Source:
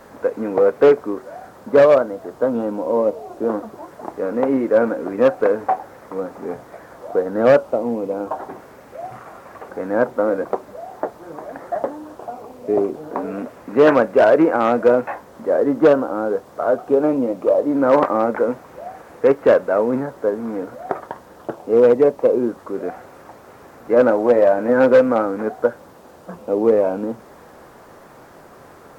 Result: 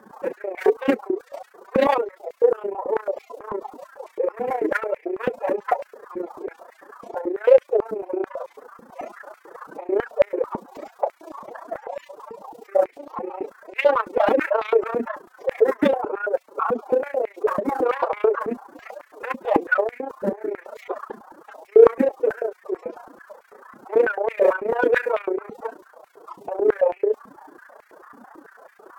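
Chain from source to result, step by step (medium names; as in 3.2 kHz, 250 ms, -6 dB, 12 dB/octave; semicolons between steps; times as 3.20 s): coarse spectral quantiser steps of 30 dB; AM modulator 29 Hz, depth 70%; formant-preserving pitch shift +11 st; in parallel at -5 dB: saturation -20.5 dBFS, distortion -8 dB; on the sum: step-sequenced high-pass 9.1 Hz 220–2200 Hz; trim -5.5 dB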